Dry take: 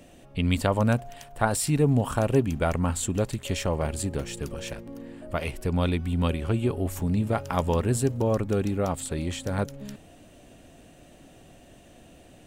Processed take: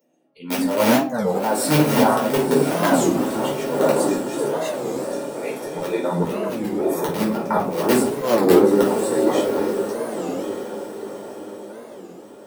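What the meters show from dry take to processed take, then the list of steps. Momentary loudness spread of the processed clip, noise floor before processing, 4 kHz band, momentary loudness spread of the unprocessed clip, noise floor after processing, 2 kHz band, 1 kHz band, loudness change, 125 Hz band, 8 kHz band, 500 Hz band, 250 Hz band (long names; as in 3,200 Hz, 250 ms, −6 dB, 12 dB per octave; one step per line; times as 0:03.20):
15 LU, −52 dBFS, +6.5 dB, 11 LU, −41 dBFS, +7.0 dB, +9.0 dB, +6.5 dB, −4.0 dB, +4.5 dB, +10.0 dB, +7.5 dB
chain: feedback delay that plays each chunk backwards 350 ms, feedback 48%, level −8 dB
noise reduction from a noise print of the clip's start 26 dB
tilt shelving filter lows +8.5 dB, about 1,200 Hz
in parallel at −9 dB: wrap-around overflow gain 10.5 dB
on the sum: Bessel high-pass filter 330 Hz, order 6
high-shelf EQ 11,000 Hz +10 dB
volume swells 240 ms
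notch filter 7,200 Hz, Q 9.4
on a send: feedback delay with all-pass diffusion 1,036 ms, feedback 41%, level −8 dB
on the sum: rectangular room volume 300 cubic metres, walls furnished, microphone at 4.5 metres
wow of a warped record 33 1/3 rpm, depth 250 cents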